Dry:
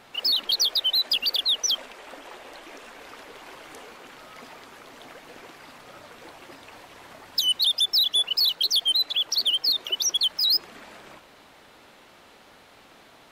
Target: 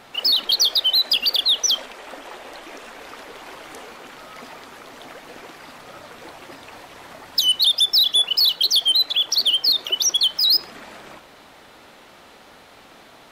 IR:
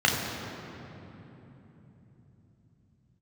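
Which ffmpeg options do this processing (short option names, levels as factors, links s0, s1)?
-filter_complex "[0:a]asplit=2[s0][s1];[1:a]atrim=start_sample=2205,atrim=end_sample=6615[s2];[s1][s2]afir=irnorm=-1:irlink=0,volume=0.0224[s3];[s0][s3]amix=inputs=2:normalize=0,volume=1.78"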